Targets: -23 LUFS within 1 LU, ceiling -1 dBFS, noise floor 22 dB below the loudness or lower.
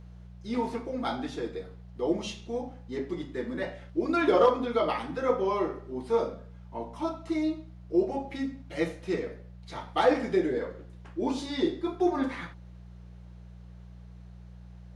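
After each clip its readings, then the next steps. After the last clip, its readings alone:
hum 60 Hz; highest harmonic 180 Hz; hum level -45 dBFS; loudness -30.0 LUFS; peak level -11.5 dBFS; loudness target -23.0 LUFS
-> de-hum 60 Hz, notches 3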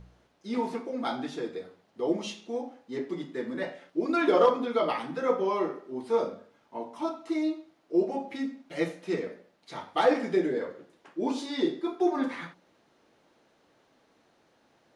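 hum not found; loudness -30.0 LUFS; peak level -11.5 dBFS; loudness target -23.0 LUFS
-> trim +7 dB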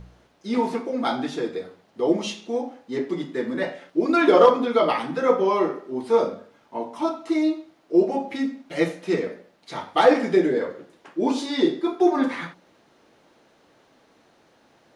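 loudness -23.0 LUFS; peak level -4.5 dBFS; noise floor -60 dBFS

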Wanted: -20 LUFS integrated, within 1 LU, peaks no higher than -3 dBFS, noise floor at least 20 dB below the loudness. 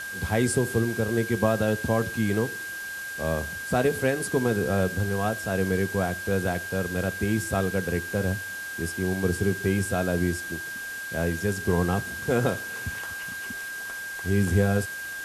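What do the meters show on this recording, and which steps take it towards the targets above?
steady tone 1.6 kHz; tone level -33 dBFS; noise floor -35 dBFS; noise floor target -47 dBFS; loudness -27.0 LUFS; peak level -8.0 dBFS; loudness target -20.0 LUFS
-> band-stop 1.6 kHz, Q 30; noise reduction 12 dB, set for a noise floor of -35 dBFS; trim +7 dB; peak limiter -3 dBFS

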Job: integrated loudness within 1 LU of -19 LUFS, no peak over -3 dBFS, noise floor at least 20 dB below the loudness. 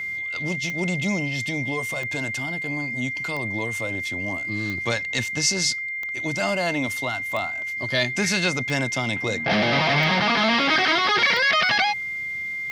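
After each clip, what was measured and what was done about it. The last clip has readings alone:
clicks found 10; steady tone 2.1 kHz; tone level -27 dBFS; loudness -22.5 LUFS; peak level -9.0 dBFS; loudness target -19.0 LUFS
-> de-click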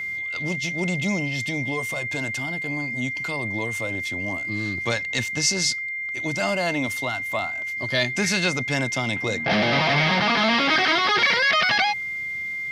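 clicks found 0; steady tone 2.1 kHz; tone level -27 dBFS
-> band-stop 2.1 kHz, Q 30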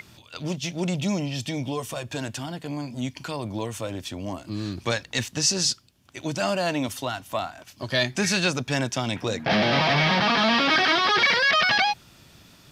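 steady tone not found; loudness -24.0 LUFS; peak level -10.0 dBFS; loudness target -19.0 LUFS
-> trim +5 dB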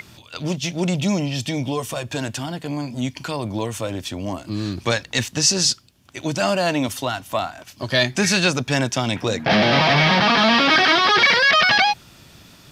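loudness -19.0 LUFS; peak level -5.0 dBFS; noise floor -48 dBFS

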